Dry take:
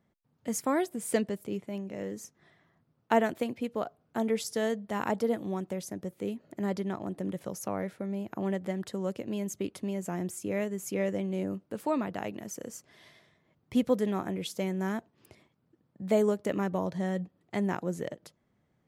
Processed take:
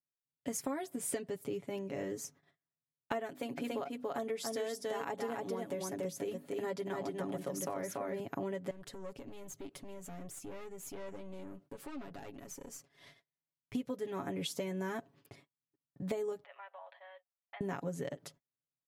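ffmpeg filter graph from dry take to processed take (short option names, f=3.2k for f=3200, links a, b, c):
-filter_complex "[0:a]asettb=1/sr,asplit=3[a][b][c];[a]atrim=end=3.294[d];[b]atrim=start=3.29:end=8.2,asetpts=PTS-STARTPTS,afade=t=in:d=0.004:c=qsin,afade=t=out:st=4.906:d=0.004:c=qsin,lowshelf=f=110:g=-9.5,bandreject=f=50:t=h:w=6,bandreject=f=100:t=h:w=6,bandreject=f=150:t=h:w=6,bandreject=f=200:t=h:w=6,bandreject=f=250:t=h:w=6,bandreject=f=300:t=h:w=6,aecho=1:1:285:0.668,atrim=end_sample=216531[e];[c]atrim=start=8.196[f];[d][e]acrossfade=d=0.004:c1=hsin:c2=qsin[g];[g][f]acrossfade=d=0.004:c1=qsin:c2=hsin,asettb=1/sr,asplit=3[h][i][j];[h]atrim=end=8.704[k];[i]atrim=start=8.7:end=13.75,asetpts=PTS-STARTPTS,afade=t=in:d=0.004:c=qsin,afade=t=out:st=5.046:d=0.004:c=qsin,aeval=exprs='(tanh(39.8*val(0)+0.55)-tanh(0.55))/39.8':c=same,acompressor=threshold=-47dB:ratio=3:attack=3.2:release=140:knee=1:detection=peak[l];[j]atrim=start=13.746[m];[k][l]acrossfade=d=0.004:c1=hsin:c2=qsin[n];[n][m]acrossfade=d=0.004:c1=qsin:c2=hsin,asettb=1/sr,asplit=3[o][p][q];[o]atrim=end=16.444[r];[p]atrim=start=16.44:end=17.61,asetpts=PTS-STARTPTS,afade=t=in:d=0.004:c=qsin,afade=t=out:st=1.166:d=0.004:c=qsin,equalizer=f=2.1k:t=o:w=1.1:g=2.5,acompressor=threshold=-45dB:ratio=4:attack=3.2:release=140:knee=1:detection=peak,asuperpass=centerf=1500:order=12:qfactor=0.51[s];[q]atrim=start=17.606[t];[r][s]acrossfade=d=0.004:c1=hsin:c2=qsin[u];[u][t]acrossfade=d=0.004:c1=qsin:c2=hsin,agate=range=-35dB:threshold=-59dB:ratio=16:detection=peak,aecho=1:1:7.2:0.79,acompressor=threshold=-34dB:ratio=12"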